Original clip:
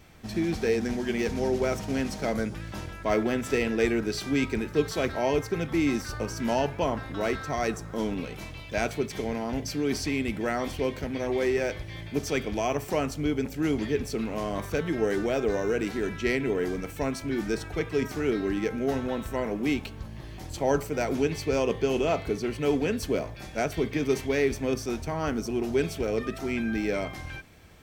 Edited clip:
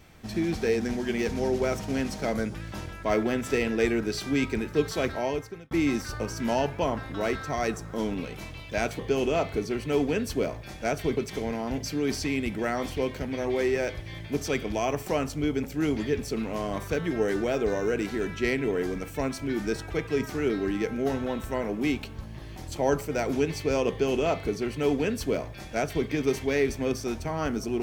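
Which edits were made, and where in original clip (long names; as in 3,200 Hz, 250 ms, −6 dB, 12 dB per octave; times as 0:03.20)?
0:05.09–0:05.71: fade out
0:21.72–0:23.90: duplicate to 0:08.99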